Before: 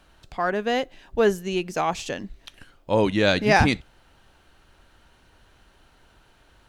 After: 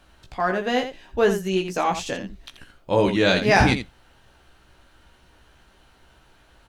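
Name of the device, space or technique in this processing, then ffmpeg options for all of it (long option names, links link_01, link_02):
slapback doubling: -filter_complex "[0:a]asplit=3[link_01][link_02][link_03];[link_02]adelay=16,volume=-4.5dB[link_04];[link_03]adelay=84,volume=-9dB[link_05];[link_01][link_04][link_05]amix=inputs=3:normalize=0"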